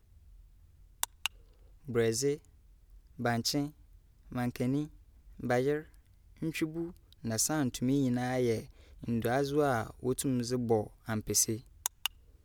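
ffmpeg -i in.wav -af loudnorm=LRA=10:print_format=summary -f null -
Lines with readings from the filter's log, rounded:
Input Integrated:    -32.8 LUFS
Input True Peak:      -9.5 dBTP
Input LRA:             3.9 LU
Input Threshold:     -43.6 LUFS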